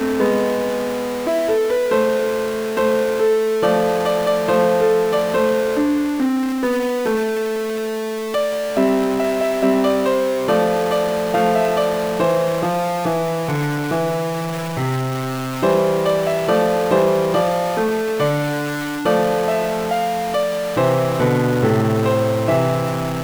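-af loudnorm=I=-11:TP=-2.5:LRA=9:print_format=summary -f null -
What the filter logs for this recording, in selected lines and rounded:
Input Integrated:    -18.6 LUFS
Input True Peak:      -3.9 dBTP
Input LRA:             2.6 LU
Input Threshold:     -28.6 LUFS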